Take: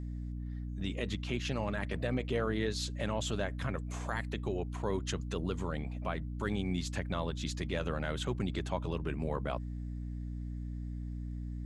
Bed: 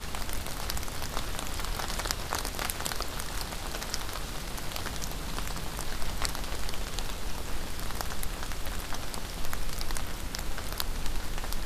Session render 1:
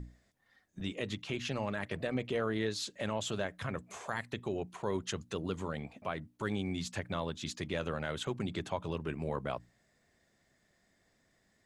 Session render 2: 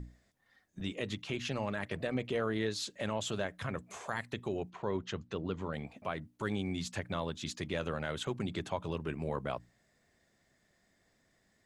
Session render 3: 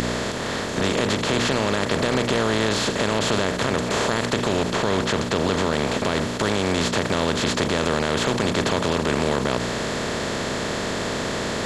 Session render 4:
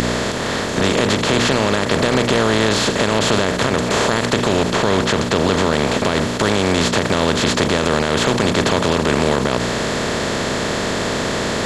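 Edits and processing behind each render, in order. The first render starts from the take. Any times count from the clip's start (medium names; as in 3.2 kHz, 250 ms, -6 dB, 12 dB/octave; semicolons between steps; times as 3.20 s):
hum notches 60/120/180/240/300 Hz
4.70–5.73 s: distance through air 150 m
spectral levelling over time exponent 0.2; in parallel at +2 dB: peak limiter -18.5 dBFS, peak gain reduction 9 dB
trim +5.5 dB; peak limiter -3 dBFS, peak gain reduction 2.5 dB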